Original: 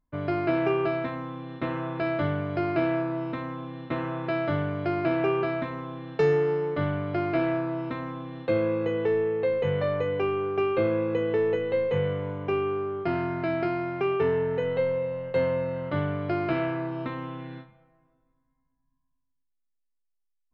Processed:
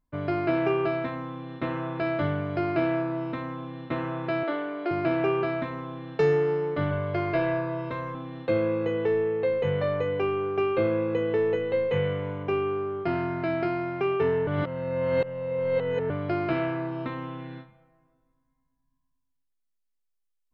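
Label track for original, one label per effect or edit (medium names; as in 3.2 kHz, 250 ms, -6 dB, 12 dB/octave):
4.430000	4.910000	elliptic band-pass 290–4400 Hz
6.910000	8.150000	comb 1.9 ms
11.910000	12.430000	peaking EQ 2.4 kHz +4 dB 1.2 oct
14.470000	16.100000	reverse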